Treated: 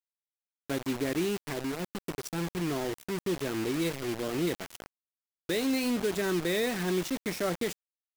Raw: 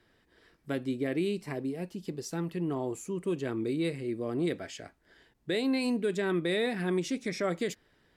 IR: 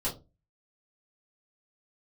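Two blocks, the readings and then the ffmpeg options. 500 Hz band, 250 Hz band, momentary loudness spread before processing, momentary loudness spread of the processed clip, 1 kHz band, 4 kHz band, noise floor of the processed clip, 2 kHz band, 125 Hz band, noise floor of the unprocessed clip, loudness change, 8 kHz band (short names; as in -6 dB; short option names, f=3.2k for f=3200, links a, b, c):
0.0 dB, 0.0 dB, 9 LU, 8 LU, +2.5 dB, +3.0 dB, under -85 dBFS, +2.0 dB, 0.0 dB, -69 dBFS, +0.5 dB, +6.0 dB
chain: -af "acrusher=bits=5:mix=0:aa=0.000001"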